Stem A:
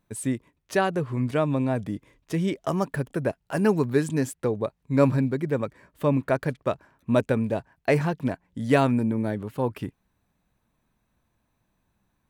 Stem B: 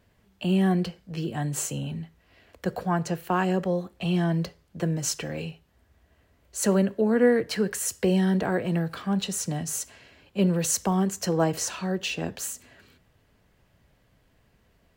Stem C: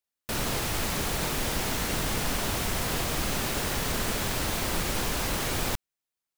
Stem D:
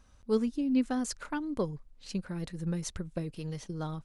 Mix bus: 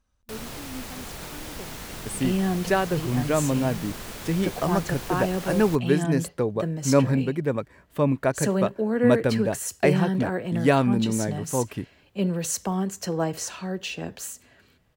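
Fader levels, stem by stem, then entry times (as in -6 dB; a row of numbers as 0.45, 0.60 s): +0.5, -2.5, -8.5, -12.0 dB; 1.95, 1.80, 0.00, 0.00 s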